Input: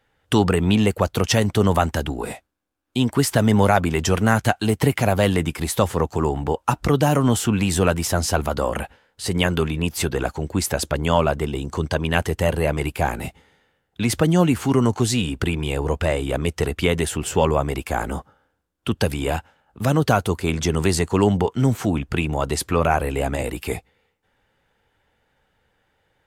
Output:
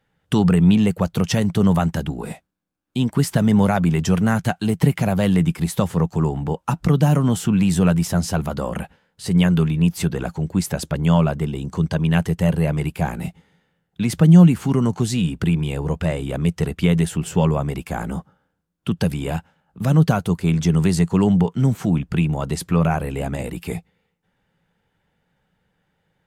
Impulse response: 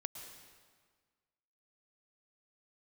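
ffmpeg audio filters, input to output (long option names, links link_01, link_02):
-af "equalizer=frequency=170:width_type=o:width=0.61:gain=15,volume=-4.5dB"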